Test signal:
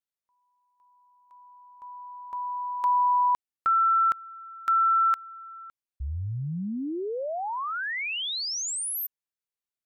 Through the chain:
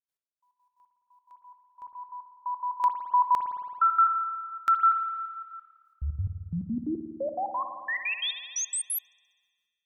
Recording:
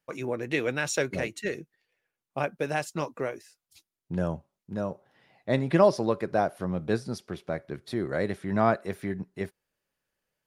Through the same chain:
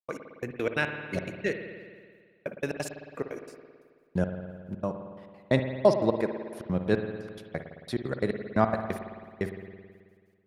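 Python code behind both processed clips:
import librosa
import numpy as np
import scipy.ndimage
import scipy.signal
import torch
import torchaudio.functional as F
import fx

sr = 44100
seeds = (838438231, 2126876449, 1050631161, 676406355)

y = fx.step_gate(x, sr, bpm=177, pattern='.x...x.x', floor_db=-60.0, edge_ms=4.5)
y = fx.rev_spring(y, sr, rt60_s=1.8, pass_ms=(54,), chirp_ms=30, drr_db=6.0)
y = y * librosa.db_to_amplitude(2.0)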